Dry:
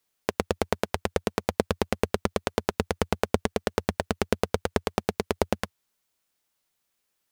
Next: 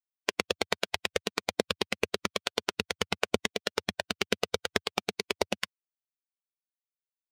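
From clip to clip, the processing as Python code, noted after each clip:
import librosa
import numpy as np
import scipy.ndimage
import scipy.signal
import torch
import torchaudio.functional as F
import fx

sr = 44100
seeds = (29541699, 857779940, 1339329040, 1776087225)

y = fx.bin_expand(x, sr, power=2.0)
y = fx.weighting(y, sr, curve='D')
y = fx.rider(y, sr, range_db=10, speed_s=2.0)
y = y * 10.0 ** (-1.0 / 20.0)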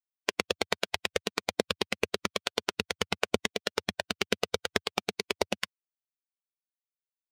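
y = x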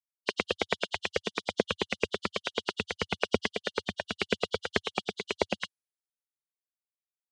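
y = fx.freq_compress(x, sr, knee_hz=2800.0, ratio=1.5)
y = fx.band_widen(y, sr, depth_pct=40)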